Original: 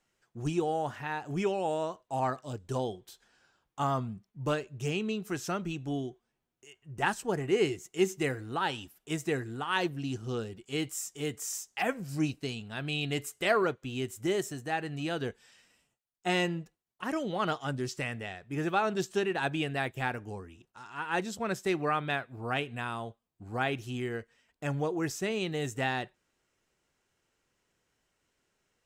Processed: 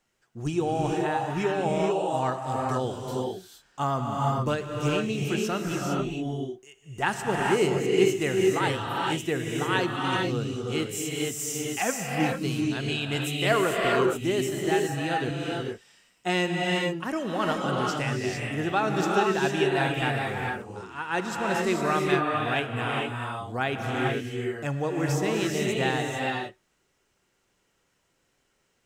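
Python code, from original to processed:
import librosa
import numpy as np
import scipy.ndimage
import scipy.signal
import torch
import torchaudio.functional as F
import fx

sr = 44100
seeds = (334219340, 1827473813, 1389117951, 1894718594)

y = fx.rev_gated(x, sr, seeds[0], gate_ms=480, shape='rising', drr_db=-1.0)
y = F.gain(torch.from_numpy(y), 2.5).numpy()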